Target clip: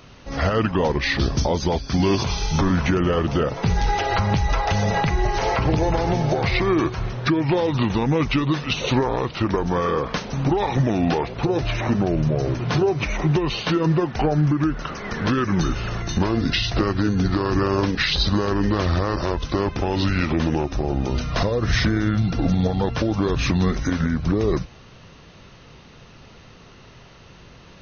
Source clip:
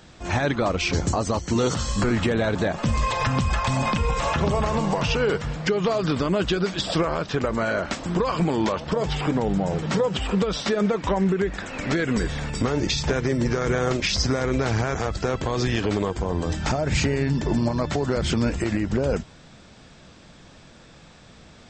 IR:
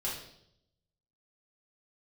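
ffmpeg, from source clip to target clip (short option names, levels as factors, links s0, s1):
-af "asetrate=34398,aresample=44100,volume=1.33"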